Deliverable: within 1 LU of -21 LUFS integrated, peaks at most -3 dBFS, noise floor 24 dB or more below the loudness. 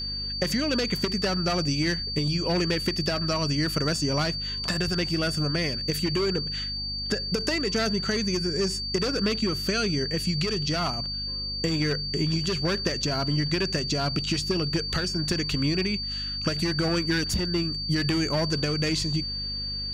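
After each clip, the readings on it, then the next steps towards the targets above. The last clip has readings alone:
hum 50 Hz; highest harmonic 250 Hz; hum level -35 dBFS; steady tone 4.6 kHz; tone level -30 dBFS; loudness -26.0 LUFS; peak level -13.5 dBFS; loudness target -21.0 LUFS
-> hum notches 50/100/150/200/250 Hz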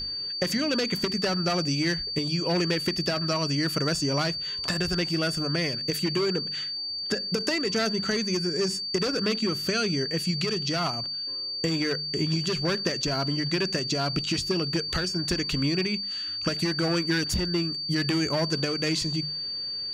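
hum not found; steady tone 4.6 kHz; tone level -30 dBFS
-> band-stop 4.6 kHz, Q 30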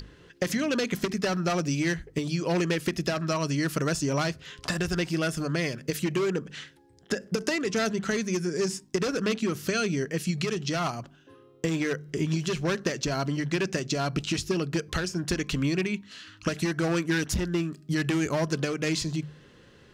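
steady tone not found; loudness -28.5 LUFS; peak level -15.0 dBFS; loudness target -21.0 LUFS
-> trim +7.5 dB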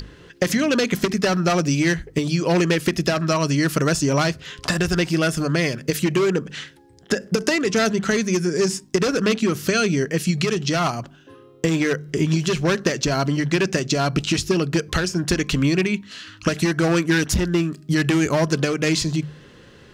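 loudness -21.0 LUFS; peak level -7.5 dBFS; noise floor -48 dBFS

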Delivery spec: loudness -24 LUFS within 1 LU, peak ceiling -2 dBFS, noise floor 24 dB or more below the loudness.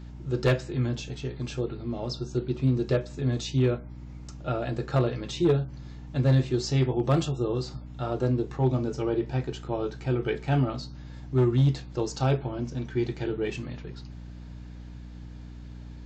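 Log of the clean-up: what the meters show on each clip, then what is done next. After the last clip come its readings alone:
clipped samples 0.4%; clipping level -15.5 dBFS; hum 60 Hz; highest harmonic 300 Hz; hum level -39 dBFS; loudness -28.0 LUFS; peak level -15.5 dBFS; loudness target -24.0 LUFS
-> clip repair -15.5 dBFS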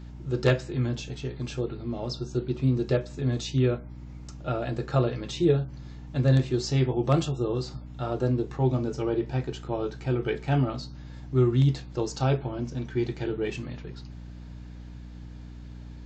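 clipped samples 0.0%; hum 60 Hz; highest harmonic 300 Hz; hum level -39 dBFS
-> de-hum 60 Hz, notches 5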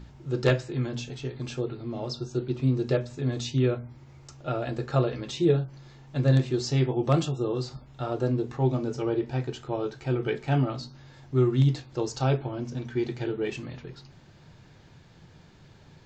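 hum not found; loudness -28.0 LUFS; peak level -7.5 dBFS; loudness target -24.0 LUFS
-> trim +4 dB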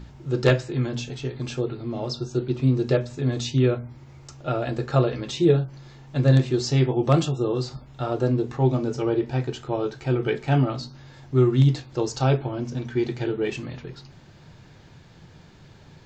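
loudness -24.0 LUFS; peak level -3.5 dBFS; noise floor -49 dBFS

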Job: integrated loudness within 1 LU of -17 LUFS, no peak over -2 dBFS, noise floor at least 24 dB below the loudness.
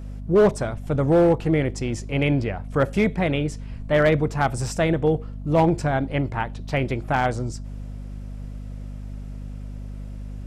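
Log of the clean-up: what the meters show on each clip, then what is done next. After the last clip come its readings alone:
clipped samples 0.6%; clipping level -11.5 dBFS; hum 50 Hz; highest harmonic 250 Hz; hum level -32 dBFS; loudness -22.5 LUFS; peak level -11.5 dBFS; loudness target -17.0 LUFS
-> clip repair -11.5 dBFS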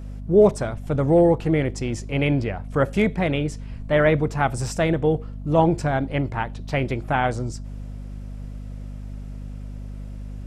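clipped samples 0.0%; hum 50 Hz; highest harmonic 250 Hz; hum level -32 dBFS
-> de-hum 50 Hz, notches 5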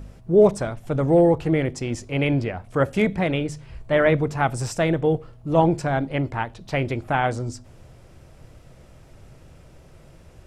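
hum not found; loudness -22.0 LUFS; peak level -6.0 dBFS; loudness target -17.0 LUFS
-> trim +5 dB; peak limiter -2 dBFS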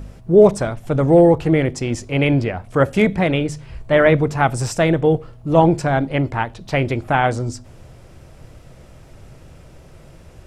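loudness -17.5 LUFS; peak level -2.0 dBFS; noise floor -44 dBFS

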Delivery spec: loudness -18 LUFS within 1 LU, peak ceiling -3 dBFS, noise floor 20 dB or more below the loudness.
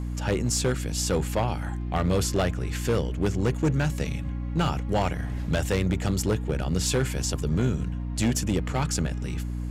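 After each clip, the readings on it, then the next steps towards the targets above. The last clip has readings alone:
clipped samples 1.7%; clipping level -17.5 dBFS; hum 60 Hz; highest harmonic 300 Hz; hum level -28 dBFS; loudness -27.0 LUFS; peak level -17.5 dBFS; loudness target -18.0 LUFS
-> clip repair -17.5 dBFS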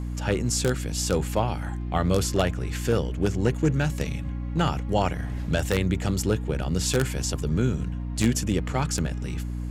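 clipped samples 0.0%; hum 60 Hz; highest harmonic 300 Hz; hum level -28 dBFS
-> de-hum 60 Hz, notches 5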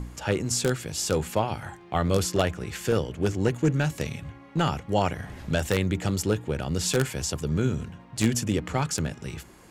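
hum not found; loudness -27.0 LUFS; peak level -7.0 dBFS; loudness target -18.0 LUFS
-> trim +9 dB; peak limiter -3 dBFS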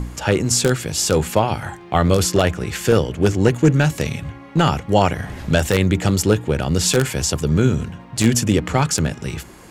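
loudness -18.5 LUFS; peak level -3.0 dBFS; noise floor -41 dBFS

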